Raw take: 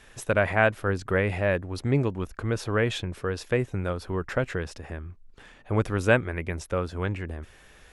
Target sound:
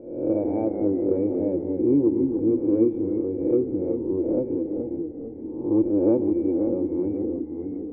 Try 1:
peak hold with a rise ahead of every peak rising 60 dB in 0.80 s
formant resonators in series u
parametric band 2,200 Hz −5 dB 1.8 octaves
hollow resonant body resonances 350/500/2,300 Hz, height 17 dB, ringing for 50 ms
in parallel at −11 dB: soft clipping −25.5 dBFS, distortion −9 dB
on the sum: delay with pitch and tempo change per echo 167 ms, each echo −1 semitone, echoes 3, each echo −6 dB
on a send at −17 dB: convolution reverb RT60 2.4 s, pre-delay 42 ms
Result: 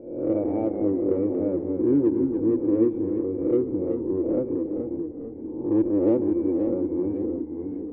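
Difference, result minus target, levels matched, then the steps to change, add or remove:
soft clipping: distortion +13 dB
change: soft clipping −14.5 dBFS, distortion −22 dB

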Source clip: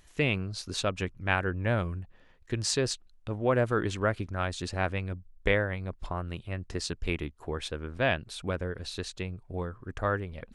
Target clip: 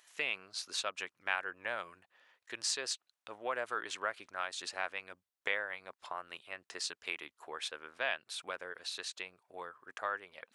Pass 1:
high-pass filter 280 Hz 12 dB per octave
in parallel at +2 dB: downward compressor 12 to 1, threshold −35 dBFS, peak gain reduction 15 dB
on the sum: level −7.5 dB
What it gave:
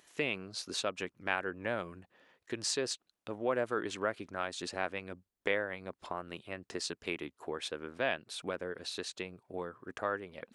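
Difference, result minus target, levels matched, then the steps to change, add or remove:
250 Hz band +13.0 dB
change: high-pass filter 870 Hz 12 dB per octave

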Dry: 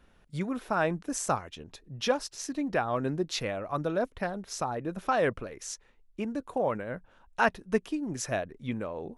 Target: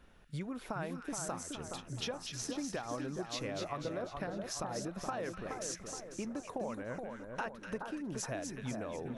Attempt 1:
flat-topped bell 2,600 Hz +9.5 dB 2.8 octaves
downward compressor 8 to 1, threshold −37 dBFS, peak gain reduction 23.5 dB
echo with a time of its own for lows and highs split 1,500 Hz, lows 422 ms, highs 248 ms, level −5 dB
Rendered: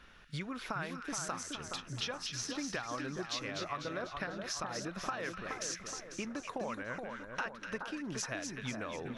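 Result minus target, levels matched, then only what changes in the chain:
2,000 Hz band +5.0 dB
remove: flat-topped bell 2,600 Hz +9.5 dB 2.8 octaves

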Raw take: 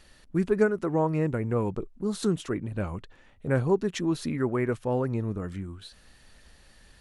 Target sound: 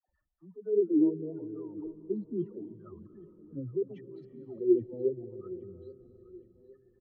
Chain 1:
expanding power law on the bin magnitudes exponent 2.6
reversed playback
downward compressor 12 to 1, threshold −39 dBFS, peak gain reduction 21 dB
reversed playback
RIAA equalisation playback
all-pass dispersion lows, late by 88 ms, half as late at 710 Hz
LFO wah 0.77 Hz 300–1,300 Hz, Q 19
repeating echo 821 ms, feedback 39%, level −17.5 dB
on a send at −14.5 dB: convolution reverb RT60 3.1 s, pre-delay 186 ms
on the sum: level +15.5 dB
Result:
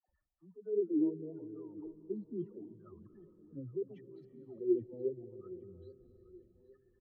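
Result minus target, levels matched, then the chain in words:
downward compressor: peak gain reduction +6.5 dB
expanding power law on the bin magnitudes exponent 2.6
reversed playback
downward compressor 12 to 1, threshold −32 dBFS, peak gain reduction 15 dB
reversed playback
RIAA equalisation playback
all-pass dispersion lows, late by 88 ms, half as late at 710 Hz
LFO wah 0.77 Hz 300–1,300 Hz, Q 19
repeating echo 821 ms, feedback 39%, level −17.5 dB
on a send at −14.5 dB: convolution reverb RT60 3.1 s, pre-delay 186 ms
on the sum: level +15.5 dB

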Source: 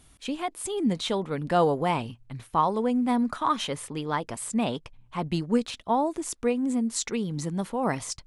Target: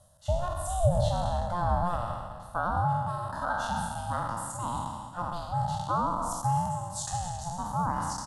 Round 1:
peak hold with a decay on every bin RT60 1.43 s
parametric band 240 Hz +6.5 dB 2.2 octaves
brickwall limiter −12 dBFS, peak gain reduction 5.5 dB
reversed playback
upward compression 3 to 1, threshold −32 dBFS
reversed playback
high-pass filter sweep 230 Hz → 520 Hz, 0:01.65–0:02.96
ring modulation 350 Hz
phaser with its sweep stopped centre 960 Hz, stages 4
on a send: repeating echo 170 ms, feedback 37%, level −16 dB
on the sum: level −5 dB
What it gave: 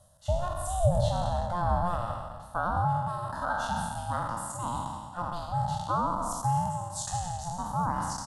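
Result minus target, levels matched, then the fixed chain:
echo 102 ms early
peak hold with a decay on every bin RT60 1.43 s
parametric band 240 Hz +6.5 dB 2.2 octaves
brickwall limiter −12 dBFS, peak gain reduction 5.5 dB
reversed playback
upward compression 3 to 1, threshold −32 dBFS
reversed playback
high-pass filter sweep 230 Hz → 520 Hz, 0:01.65–0:02.96
ring modulation 350 Hz
phaser with its sweep stopped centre 960 Hz, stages 4
on a send: repeating echo 272 ms, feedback 37%, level −16 dB
on the sum: level −5 dB

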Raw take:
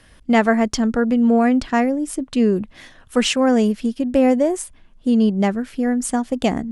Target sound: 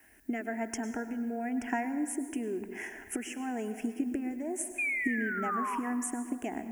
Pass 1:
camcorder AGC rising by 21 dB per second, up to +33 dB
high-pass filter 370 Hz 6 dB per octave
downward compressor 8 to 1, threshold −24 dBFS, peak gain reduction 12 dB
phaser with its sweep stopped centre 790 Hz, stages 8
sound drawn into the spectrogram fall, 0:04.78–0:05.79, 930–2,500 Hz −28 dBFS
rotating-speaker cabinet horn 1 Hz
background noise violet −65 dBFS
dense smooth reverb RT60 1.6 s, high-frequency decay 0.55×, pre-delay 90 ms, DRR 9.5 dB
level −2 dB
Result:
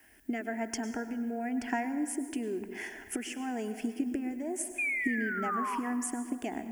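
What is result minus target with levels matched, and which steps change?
4,000 Hz band +4.5 dB
add after downward compressor: Butterworth band-reject 4,100 Hz, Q 1.5

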